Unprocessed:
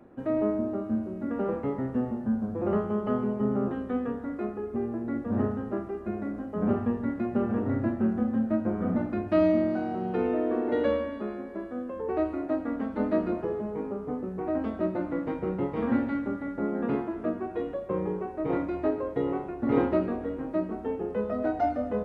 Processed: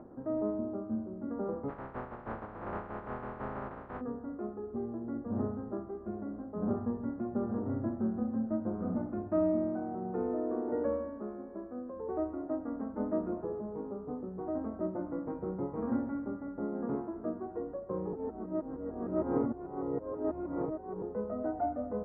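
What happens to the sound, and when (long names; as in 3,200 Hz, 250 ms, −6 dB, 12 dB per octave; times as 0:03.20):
0:01.68–0:04.00: compressing power law on the bin magnitudes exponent 0.14
0:18.13–0:21.02: reverse
whole clip: upward compression, threshold −36 dBFS; low-pass filter 1,300 Hz 24 dB per octave; level −6.5 dB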